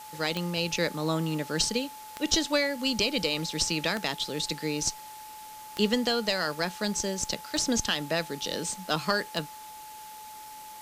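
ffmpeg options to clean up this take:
-af "adeclick=t=4,bandreject=f=860:w=30,afftdn=nr=30:nf=-44"

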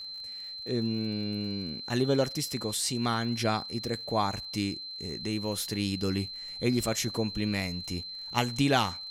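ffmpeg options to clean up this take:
-af "adeclick=t=4,bandreject=f=4.1k:w=30"

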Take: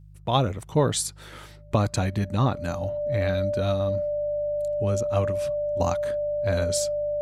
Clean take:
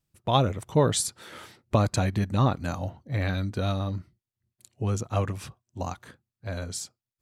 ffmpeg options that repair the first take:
-af "bandreject=f=50.9:t=h:w=4,bandreject=f=101.8:t=h:w=4,bandreject=f=152.7:t=h:w=4,bandreject=f=590:w=30,asetnsamples=n=441:p=0,asendcmd='5.8 volume volume -6.5dB',volume=0dB"

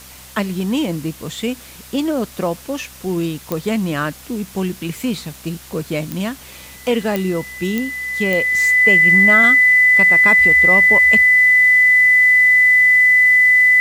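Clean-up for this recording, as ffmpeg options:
-af "adeclick=t=4,bandreject=f=64.2:t=h:w=4,bandreject=f=128.4:t=h:w=4,bandreject=f=192.6:t=h:w=4,bandreject=f=256.8:t=h:w=4,bandreject=f=2k:w=30,afwtdn=0.011"

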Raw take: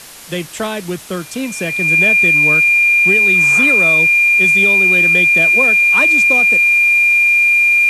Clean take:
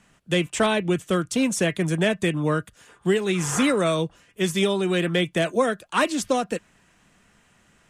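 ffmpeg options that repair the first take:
-af "bandreject=f=2.4k:w=30,afwtdn=0.02"

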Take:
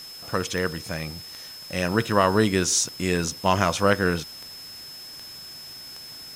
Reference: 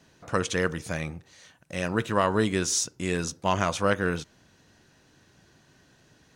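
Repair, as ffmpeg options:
-af "adeclick=t=4,bandreject=f=5.2k:w=30,afwtdn=0.005,asetnsamples=n=441:p=0,asendcmd='1.18 volume volume -4dB',volume=0dB"

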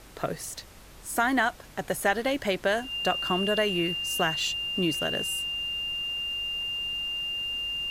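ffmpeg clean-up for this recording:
-af "bandreject=f=47.6:t=h:w=4,bandreject=f=95.2:t=h:w=4,bandreject=f=142.8:t=h:w=4,bandreject=f=190.4:t=h:w=4,bandreject=f=2.8k:w=30,afftdn=nr=26:nf=-48"

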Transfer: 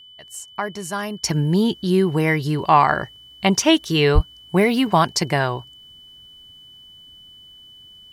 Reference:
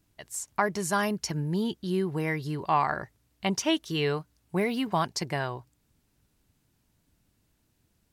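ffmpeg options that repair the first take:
-filter_complex "[0:a]bandreject=f=3k:w=30,asplit=3[a][b][c];[a]afade=t=out:st=4.14:d=0.02[d];[b]highpass=f=140:w=0.5412,highpass=f=140:w=1.3066,afade=t=in:st=4.14:d=0.02,afade=t=out:st=4.26:d=0.02[e];[c]afade=t=in:st=4.26:d=0.02[f];[d][e][f]amix=inputs=3:normalize=0,asetnsamples=n=441:p=0,asendcmd='1.24 volume volume -10.5dB',volume=0dB"

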